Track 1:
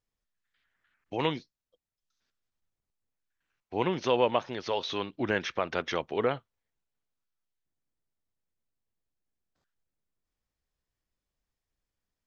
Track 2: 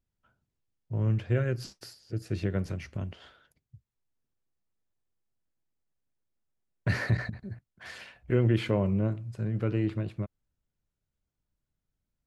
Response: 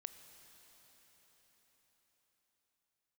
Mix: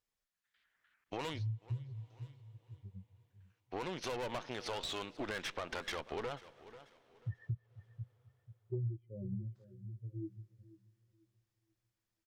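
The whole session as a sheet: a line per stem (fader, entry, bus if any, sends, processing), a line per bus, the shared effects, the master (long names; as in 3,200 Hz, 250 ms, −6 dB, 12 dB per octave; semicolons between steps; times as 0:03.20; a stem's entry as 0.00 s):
+3.0 dB, 0.00 s, send −12 dB, echo send −20 dB, low-shelf EQ 470 Hz −7 dB; tube saturation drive 33 dB, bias 0.75
−1.0 dB, 0.40 s, send −19 dB, echo send −18.5 dB, high-shelf EQ 2,000 Hz +11 dB; every bin expanded away from the loudest bin 4 to 1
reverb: on, RT60 5.5 s, pre-delay 18 ms
echo: repeating echo 489 ms, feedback 28%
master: downward compressor 6 to 1, threshold −36 dBFS, peak gain reduction 17.5 dB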